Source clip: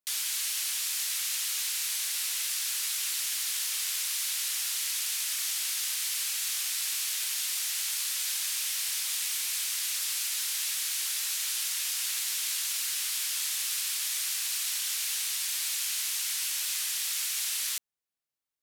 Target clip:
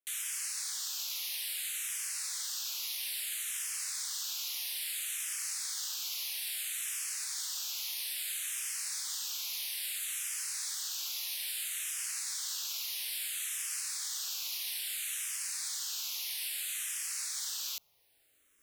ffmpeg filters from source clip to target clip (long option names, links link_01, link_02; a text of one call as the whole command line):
ffmpeg -i in.wav -filter_complex "[0:a]areverse,acompressor=mode=upward:threshold=-42dB:ratio=2.5,areverse,asplit=2[link_01][link_02];[link_02]afreqshift=-0.6[link_03];[link_01][link_03]amix=inputs=2:normalize=1,volume=-3dB" out.wav